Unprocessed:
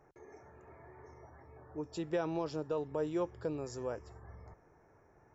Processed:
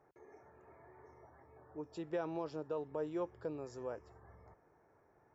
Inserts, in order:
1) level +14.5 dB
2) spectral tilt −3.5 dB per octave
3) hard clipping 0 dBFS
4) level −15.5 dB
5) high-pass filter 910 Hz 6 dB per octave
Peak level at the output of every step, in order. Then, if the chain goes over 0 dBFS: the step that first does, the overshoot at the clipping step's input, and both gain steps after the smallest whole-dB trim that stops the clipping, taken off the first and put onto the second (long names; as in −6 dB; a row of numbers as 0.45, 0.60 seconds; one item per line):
−10.5, −5.5, −5.5, −21.0, −28.5 dBFS
no step passes full scale